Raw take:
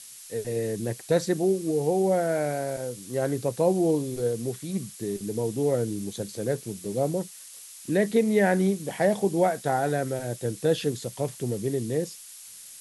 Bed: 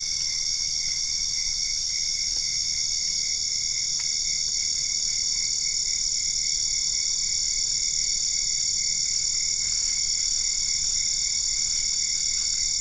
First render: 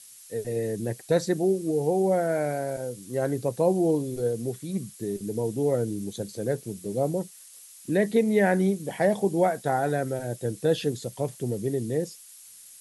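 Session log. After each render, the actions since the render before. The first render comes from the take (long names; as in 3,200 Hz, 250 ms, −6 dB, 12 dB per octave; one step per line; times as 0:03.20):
broadband denoise 6 dB, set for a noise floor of −45 dBFS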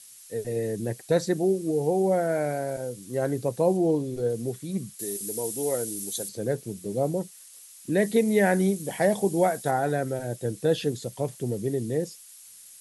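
0:03.77–0:04.30: high-shelf EQ 9,400 Hz −10.5 dB
0:04.99–0:06.29: RIAA equalisation recording
0:07.97–0:09.71: high-shelf EQ 5,100 Hz +8 dB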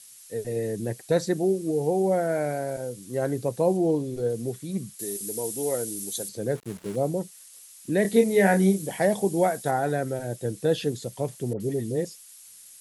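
0:06.55–0:06.96: gap after every zero crossing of 0.19 ms
0:08.02–0:08.87: double-tracking delay 26 ms −4 dB
0:11.53–0:12.05: all-pass dispersion highs, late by 72 ms, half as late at 1,300 Hz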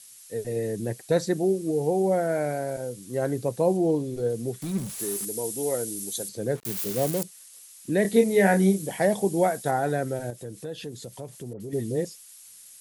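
0:04.62–0:05.25: converter with a step at zero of −34 dBFS
0:06.65–0:07.23: spike at every zero crossing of −20.5 dBFS
0:10.30–0:11.73: downward compressor 2.5 to 1, threshold −37 dBFS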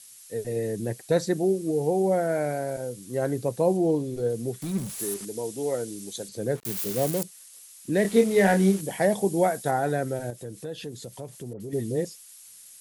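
0:05.14–0:06.32: high-frequency loss of the air 56 metres
0:07.93–0:08.81: variable-slope delta modulation 64 kbit/s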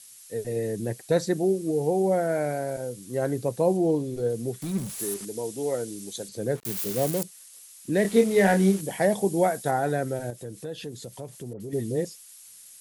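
no processing that can be heard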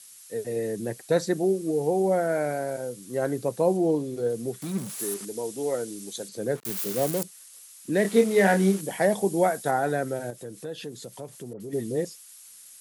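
high-pass filter 150 Hz 12 dB per octave
parametric band 1,300 Hz +3 dB 0.77 octaves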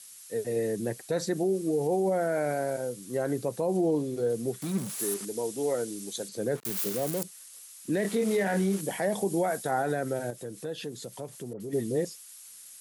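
brickwall limiter −19 dBFS, peak gain reduction 11 dB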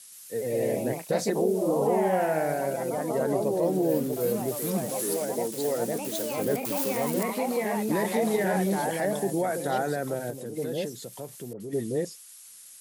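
delay with pitch and tempo change per echo 121 ms, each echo +2 semitones, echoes 3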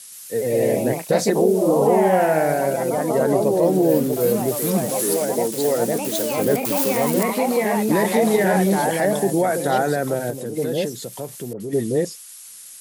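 level +8 dB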